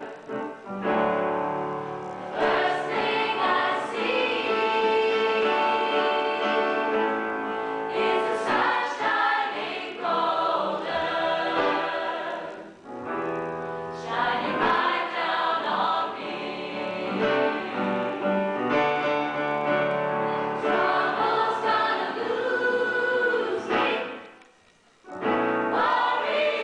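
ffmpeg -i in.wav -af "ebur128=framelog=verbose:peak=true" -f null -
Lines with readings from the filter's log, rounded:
Integrated loudness:
  I:         -25.2 LUFS
  Threshold: -35.4 LUFS
Loudness range:
  LRA:         3.4 LU
  Threshold: -45.3 LUFS
  LRA low:   -27.0 LUFS
  LRA high:  -23.6 LUFS
True peak:
  Peak:      -10.8 dBFS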